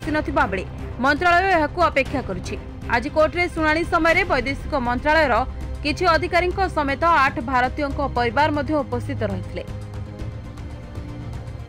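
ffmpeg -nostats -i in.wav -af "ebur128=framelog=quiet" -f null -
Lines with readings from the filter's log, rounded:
Integrated loudness:
  I:         -20.3 LUFS
  Threshold: -31.1 LUFS
Loudness range:
  LRA:         5.1 LU
  Threshold: -40.7 LUFS
  LRA low:   -24.7 LUFS
  LRA high:  -19.6 LUFS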